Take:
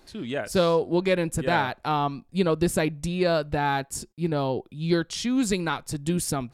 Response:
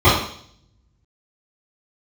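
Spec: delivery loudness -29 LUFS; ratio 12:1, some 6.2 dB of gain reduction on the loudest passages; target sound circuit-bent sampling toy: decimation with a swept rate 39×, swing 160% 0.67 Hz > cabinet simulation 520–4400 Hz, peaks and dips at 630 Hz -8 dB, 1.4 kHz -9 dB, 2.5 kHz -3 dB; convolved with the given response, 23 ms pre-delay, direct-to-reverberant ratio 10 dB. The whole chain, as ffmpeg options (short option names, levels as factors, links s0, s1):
-filter_complex "[0:a]acompressor=threshold=0.0708:ratio=12,asplit=2[s0][s1];[1:a]atrim=start_sample=2205,adelay=23[s2];[s1][s2]afir=irnorm=-1:irlink=0,volume=0.0141[s3];[s0][s3]amix=inputs=2:normalize=0,acrusher=samples=39:mix=1:aa=0.000001:lfo=1:lforange=62.4:lforate=0.67,highpass=520,equalizer=f=630:t=q:w=4:g=-8,equalizer=f=1400:t=q:w=4:g=-9,equalizer=f=2500:t=q:w=4:g=-3,lowpass=f=4400:w=0.5412,lowpass=f=4400:w=1.3066,volume=2.51"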